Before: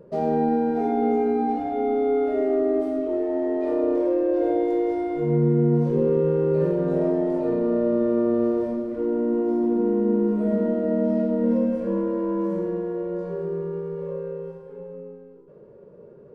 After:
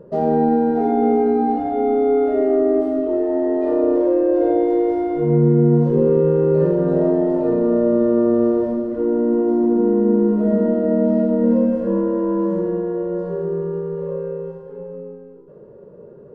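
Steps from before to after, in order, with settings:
high-shelf EQ 2,900 Hz −9 dB
notch filter 2,300 Hz, Q 7.9
level +5.5 dB

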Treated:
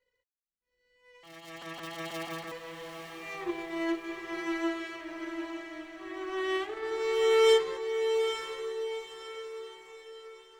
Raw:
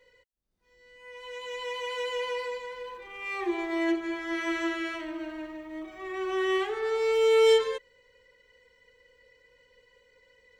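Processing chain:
0:01.23–0:02.52: sub-harmonics by changed cycles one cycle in 3, inverted
power curve on the samples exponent 1.4
feedback delay with all-pass diffusion 841 ms, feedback 46%, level −6 dB

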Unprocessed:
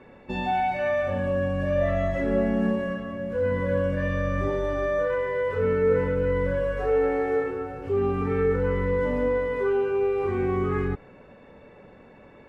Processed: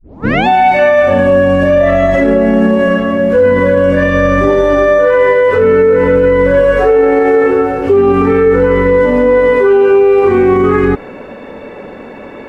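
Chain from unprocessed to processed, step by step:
turntable start at the beginning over 0.47 s
low shelf with overshoot 190 Hz −6.5 dB, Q 1.5
boost into a limiter +21.5 dB
level −1 dB

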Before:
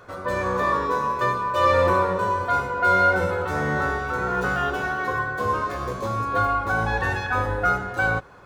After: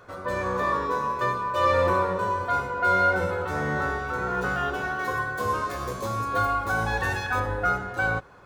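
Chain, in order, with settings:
0:04.99–0:07.40: high-shelf EQ 5,100 Hz +10.5 dB
level −3 dB

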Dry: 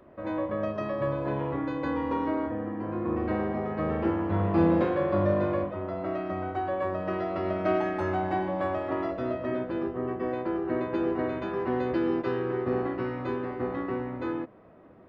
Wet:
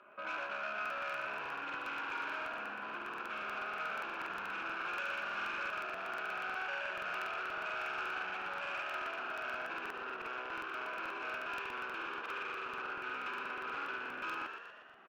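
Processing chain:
0:04.46–0:05.70: lower of the sound and its delayed copy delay 9.2 ms
comb filter 4.9 ms, depth 49%
brickwall limiter −25 dBFS, peak gain reduction 11.5 dB
wave folding −30 dBFS
speech leveller 0.5 s
pair of resonant band-passes 1,900 Hz, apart 0.77 octaves
soft clipping −40 dBFS, distortion −23 dB
echo with shifted repeats 118 ms, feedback 55%, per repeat +68 Hz, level −6 dB
regular buffer underruns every 0.12 s, samples 2,048, repeat, from 0:00.81
level +9 dB

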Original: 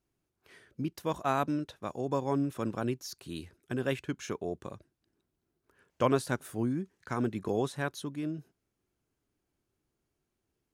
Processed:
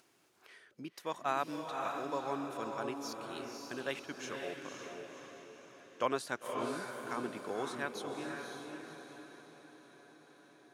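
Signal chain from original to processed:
meter weighting curve A
feedback delay with all-pass diffusion 536 ms, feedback 48%, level −3.5 dB
upward compression, threshold −49 dBFS
level −3.5 dB

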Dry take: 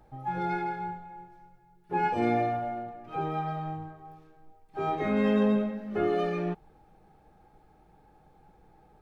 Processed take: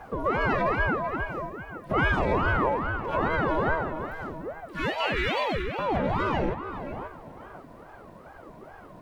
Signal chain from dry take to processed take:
0:04.06–0:05.79: elliptic band-stop filter 160–1,500 Hz
in parallel at +3 dB: downward compressor, threshold −43 dBFS, peak gain reduction 19.5 dB
on the sum: brickwall limiter −23.5 dBFS, peak gain reduction 10 dB
speech leveller 2 s
on a send: tape delay 540 ms, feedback 30%, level −8 dB, low-pass 2,100 Hz
on the sum: ring modulator whose carrier an LFO sweeps 480 Hz, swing 70%, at 2.4 Hz
level +8 dB

